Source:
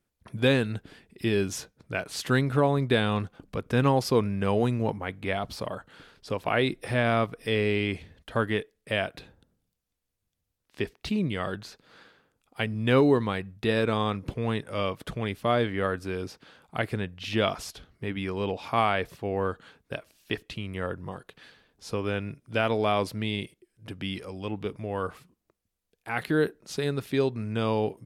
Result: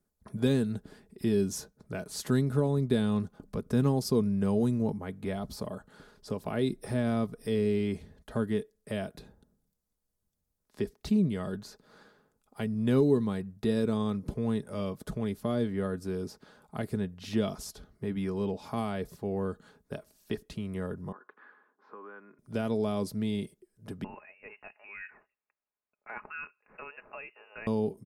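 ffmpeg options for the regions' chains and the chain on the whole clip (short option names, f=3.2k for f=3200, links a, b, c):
-filter_complex "[0:a]asettb=1/sr,asplit=3[a][b][c];[a]atrim=end=21.124[d];[b]atrim=start=21.12:end=22.39,asetpts=PTS-STARTPTS,afade=t=in:d=0.004:c=qsin,afade=t=out:st=1.266:d=0.004:c=qsin,acompressor=threshold=-41dB:ratio=3:attack=3.2:release=140:knee=1:detection=peak,highpass=f=310:w=0.5412,highpass=f=310:w=1.3066,equalizer=f=440:t=q:w=4:g=-6,equalizer=f=640:t=q:w=4:g=-8,equalizer=f=1.1k:t=q:w=4:g=9,equalizer=f=1.5k:t=q:w=4:g=6,lowpass=f=2.1k:w=0.5412,lowpass=f=2.1k:w=1.3066[e];[c]atrim=start=22.386[f];[d][e]acrossfade=d=0.004:c1=hsin:c2=qsin[g];[g][f]acrossfade=d=0.004:c1=qsin:c2=hsin,asettb=1/sr,asplit=3[h][i][j];[h]atrim=end=24.044[k];[i]atrim=start=24.04:end=27.67,asetpts=PTS-STARTPTS,afade=t=in:d=0.004:c=qsin,afade=t=out:st=3.626:d=0.004:c=qsin,highpass=560,lowpass=f=2.6k:t=q:w=0.5098,lowpass=f=2.6k:t=q:w=0.6013,lowpass=f=2.6k:t=q:w=0.9,lowpass=f=2.6k:t=q:w=2.563,afreqshift=-3000[l];[j]atrim=start=27.666[m];[k][l]acrossfade=d=0.004:c1=hsin:c2=qsin[n];[n][m]acrossfade=d=0.004:c1=qsin:c2=hsin,equalizer=f=2.7k:t=o:w=1.3:g=-12.5,aecho=1:1:4.8:0.41,acrossover=split=380|3000[o][p][q];[p]acompressor=threshold=-45dB:ratio=2[r];[o][r][q]amix=inputs=3:normalize=0"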